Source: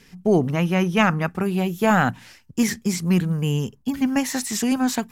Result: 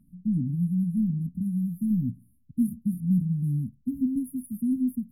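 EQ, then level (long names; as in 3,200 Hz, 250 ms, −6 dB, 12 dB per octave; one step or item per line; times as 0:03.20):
linear-phase brick-wall band-stop 290–9,500 Hz
high-shelf EQ 6,500 Hz −10.5 dB
−3.5 dB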